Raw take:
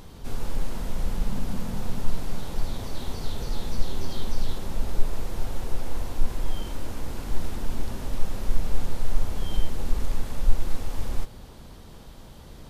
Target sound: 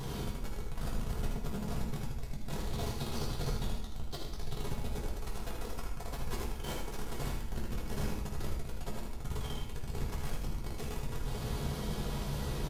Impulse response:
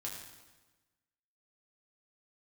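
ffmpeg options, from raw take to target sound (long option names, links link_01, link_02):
-filter_complex "[0:a]asettb=1/sr,asplit=3[link_01][link_02][link_03];[link_01]atrim=end=5.074[link_04];[link_02]atrim=start=5.07:end=7.16,asetpts=PTS-STARTPTS,afade=type=in:duration=0.004:curve=qsin,afade=type=out:start_time=2.086:duration=0.004:curve=qsin,equalizer=frequency=67:width=0.58:gain=-8.5[link_05];[link_03]atrim=start=7.156[link_06];[link_04][link_05]acrossfade=duration=0.004:curve1=hsin:curve2=qsin[link_07];[link_07][link_06]acrossfade=duration=0.004:curve1=qsin:curve2=hsin,alimiter=level_in=5dB:limit=-24dB:level=0:latency=1:release=39,volume=-5dB,asoftclip=type=tanh:threshold=-40dB,aecho=1:1:79:0.473[link_08];[1:a]atrim=start_sample=2205,asetrate=61740,aresample=44100[link_09];[link_08][link_09]afir=irnorm=-1:irlink=0,volume=14dB"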